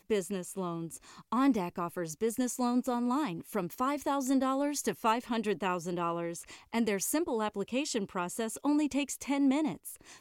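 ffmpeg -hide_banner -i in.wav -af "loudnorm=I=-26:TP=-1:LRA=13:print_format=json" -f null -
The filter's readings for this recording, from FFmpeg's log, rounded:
"input_i" : "-32.2",
"input_tp" : "-16.3",
"input_lra" : "0.9",
"input_thresh" : "-42.5",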